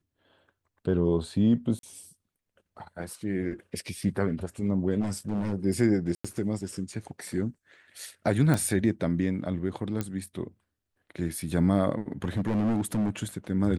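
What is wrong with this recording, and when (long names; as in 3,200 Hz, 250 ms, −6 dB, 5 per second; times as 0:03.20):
0:01.79–0:01.83: drop-out 42 ms
0:05.01–0:05.54: clipping −25 dBFS
0:06.15–0:06.25: drop-out 95 ms
0:08.54: click −14 dBFS
0:10.01: click −16 dBFS
0:12.24–0:13.10: clipping −22.5 dBFS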